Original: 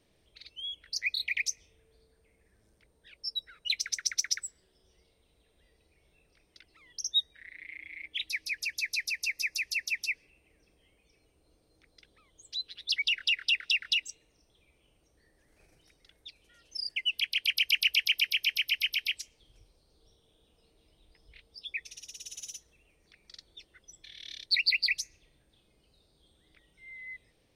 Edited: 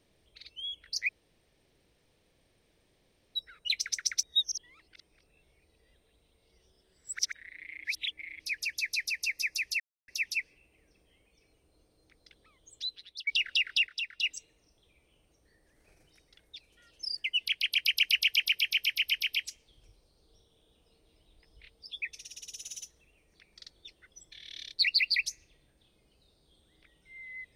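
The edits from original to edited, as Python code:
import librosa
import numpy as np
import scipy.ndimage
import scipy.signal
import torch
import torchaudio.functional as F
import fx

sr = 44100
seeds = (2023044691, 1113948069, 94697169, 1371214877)

y = fx.edit(x, sr, fx.room_tone_fill(start_s=1.09, length_s=2.26),
    fx.reverse_span(start_s=4.23, length_s=3.1),
    fx.reverse_span(start_s=7.85, length_s=0.55),
    fx.insert_silence(at_s=9.8, length_s=0.28),
    fx.fade_out_to(start_s=12.55, length_s=0.44, floor_db=-23.0),
    fx.clip_gain(start_s=13.59, length_s=0.36, db=-7.5), tone=tone)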